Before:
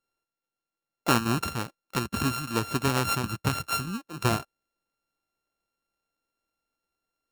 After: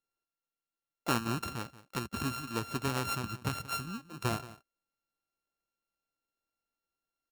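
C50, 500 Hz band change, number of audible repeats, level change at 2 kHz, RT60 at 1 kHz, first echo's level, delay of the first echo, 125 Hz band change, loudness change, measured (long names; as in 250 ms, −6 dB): no reverb audible, −7.5 dB, 1, −7.5 dB, no reverb audible, −17.0 dB, 180 ms, −7.5 dB, −7.5 dB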